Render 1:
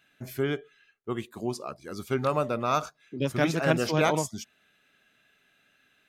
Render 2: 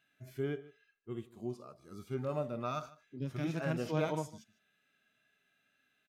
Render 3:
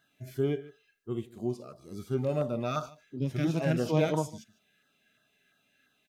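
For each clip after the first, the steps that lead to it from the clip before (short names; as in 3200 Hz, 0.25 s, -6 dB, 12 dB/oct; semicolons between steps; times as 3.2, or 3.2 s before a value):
harmonic-percussive split percussive -17 dB; echo 0.151 s -20 dB; gain -6.5 dB
LFO notch saw down 2.9 Hz 820–2600 Hz; gain +7.5 dB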